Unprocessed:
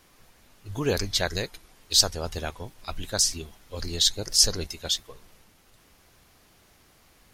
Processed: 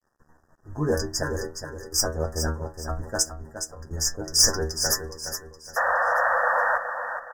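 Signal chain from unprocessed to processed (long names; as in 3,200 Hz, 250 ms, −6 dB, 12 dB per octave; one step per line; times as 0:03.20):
adaptive Wiener filter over 9 samples
0:03.22–0:03.91: downward compressor 6 to 1, threshold −41 dBFS, peak gain reduction 19 dB
0:04.43–0:05.09: parametric band 2,600 Hz +13 dB 2.9 octaves
sine wavefolder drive 8 dB, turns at −1 dBFS
stiff-string resonator 76 Hz, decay 0.33 s, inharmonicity 0.002
0:01.23–0:02.02: phaser with its sweep stopped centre 660 Hz, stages 6
0:05.76–0:06.78: sound drawn into the spectrogram noise 480–2,600 Hz −21 dBFS
dead-zone distortion −53.5 dBFS
linear-phase brick-wall band-stop 1,900–4,800 Hz
repeating echo 417 ms, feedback 34%, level −8.5 dB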